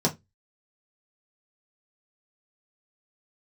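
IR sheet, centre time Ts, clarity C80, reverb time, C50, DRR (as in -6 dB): 10 ms, 29.0 dB, 0.20 s, 18.5 dB, -3.0 dB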